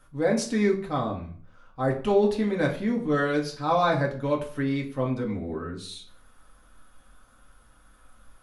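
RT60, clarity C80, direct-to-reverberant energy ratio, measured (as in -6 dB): 0.45 s, 14.5 dB, -1.5 dB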